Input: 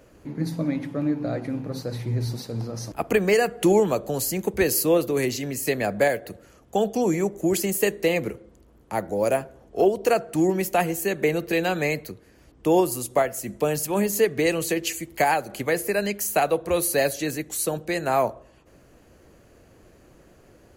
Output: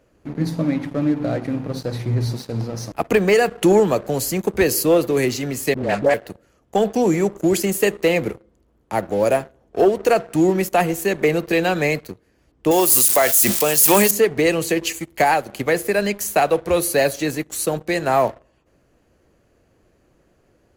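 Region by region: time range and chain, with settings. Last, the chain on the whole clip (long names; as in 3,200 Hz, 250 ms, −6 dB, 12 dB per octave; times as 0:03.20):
0:05.74–0:06.14: linear-phase brick-wall low-pass 9,500 Hz + all-pass dispersion highs, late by 95 ms, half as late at 550 Hz + highs frequency-modulated by the lows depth 0.15 ms
0:12.71–0:14.11: spike at every zero crossing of −24.5 dBFS + spectral tilt +3 dB per octave + level that may fall only so fast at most 24 dB per second
whole clip: high-shelf EQ 8,100 Hz −5 dB; leveller curve on the samples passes 2; level −2.5 dB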